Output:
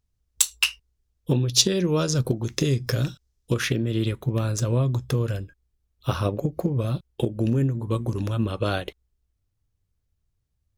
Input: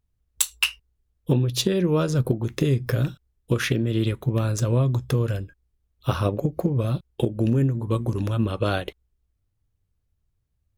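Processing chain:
parametric band 5,700 Hz +6.5 dB 1.2 octaves, from 0:01.35 +13 dB, from 0:03.54 +3.5 dB
level −1.5 dB

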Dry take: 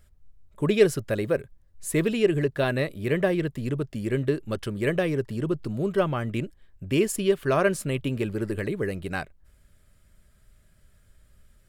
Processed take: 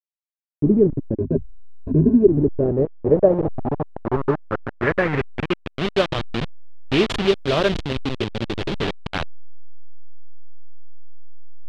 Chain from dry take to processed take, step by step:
hold until the input has moved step −22 dBFS
0:01.18–0:02.27: EQ curve with evenly spaced ripples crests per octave 1.5, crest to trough 14 dB
low-pass filter sweep 280 Hz → 3,500 Hz, 0:02.24–0:05.90
0:07.31–0:08.81: parametric band 1,500 Hz −4.5 dB 1.7 octaves
level +4.5 dB

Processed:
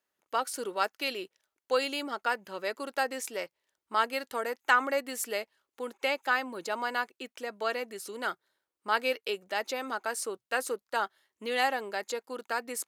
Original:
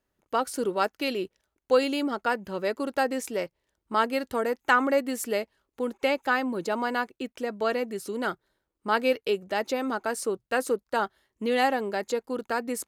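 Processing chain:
high-pass filter 980 Hz 6 dB per octave

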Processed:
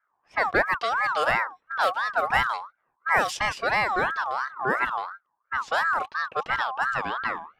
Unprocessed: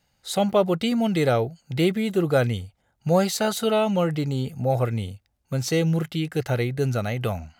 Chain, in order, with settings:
low-pass that shuts in the quiet parts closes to 470 Hz, open at −16.5 dBFS
ring modulator whose carrier an LFO sweeps 1,200 Hz, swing 25%, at 2.9 Hz

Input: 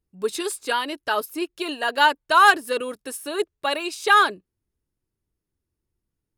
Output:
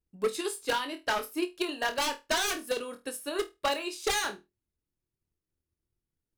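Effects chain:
wave folding −18 dBFS
flutter between parallel walls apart 4.3 metres, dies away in 0.22 s
transient designer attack +7 dB, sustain 0 dB
level −8 dB

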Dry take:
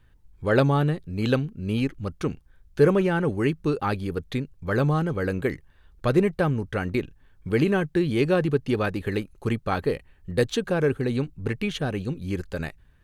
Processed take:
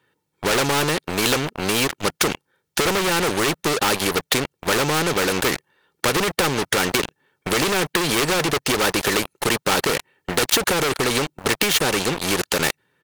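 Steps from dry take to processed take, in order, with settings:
high-pass filter 180 Hz 24 dB per octave
comb filter 2.2 ms, depth 55%
leveller curve on the samples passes 5
downward compressor, threshold −12 dBFS, peak gain reduction 5.5 dB
every bin compressed towards the loudest bin 2 to 1
level +3.5 dB

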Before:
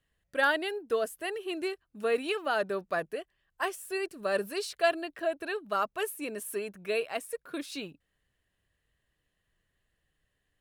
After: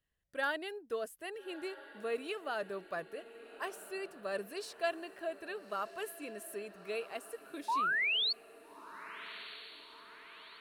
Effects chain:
sound drawn into the spectrogram rise, 0:07.68–0:08.33, 860–4,600 Hz −23 dBFS
feedback delay with all-pass diffusion 1,295 ms, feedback 53%, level −15 dB
level −8.5 dB

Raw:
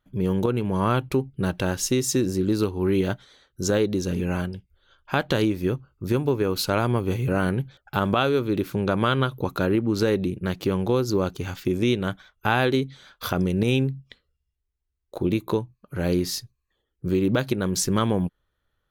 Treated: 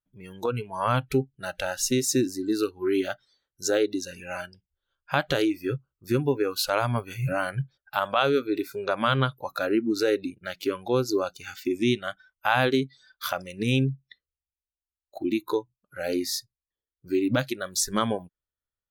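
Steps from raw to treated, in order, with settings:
noise reduction from a noise print of the clip's start 21 dB

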